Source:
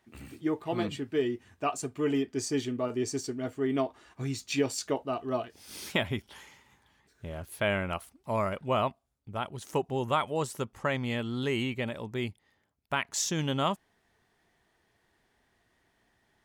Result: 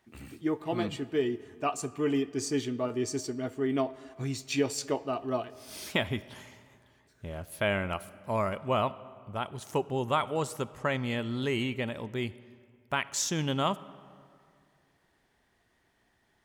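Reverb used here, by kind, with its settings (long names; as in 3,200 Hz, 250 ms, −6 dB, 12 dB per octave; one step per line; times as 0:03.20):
comb and all-pass reverb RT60 2.3 s, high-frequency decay 0.55×, pre-delay 10 ms, DRR 17.5 dB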